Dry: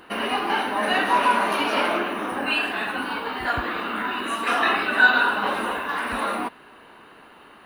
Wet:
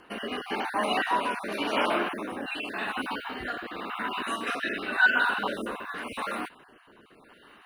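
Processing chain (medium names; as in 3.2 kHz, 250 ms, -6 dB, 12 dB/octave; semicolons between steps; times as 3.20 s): random holes in the spectrogram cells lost 22%; rotary cabinet horn 0.9 Hz; trim -2.5 dB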